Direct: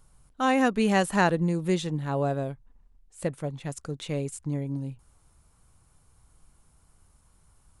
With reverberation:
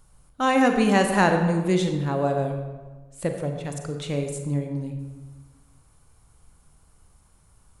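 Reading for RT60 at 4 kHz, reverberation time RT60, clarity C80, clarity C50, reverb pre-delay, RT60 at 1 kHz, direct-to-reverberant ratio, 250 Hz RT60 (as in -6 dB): 0.85 s, 1.3 s, 7.5 dB, 6.0 dB, 32 ms, 1.3 s, 4.5 dB, 1.5 s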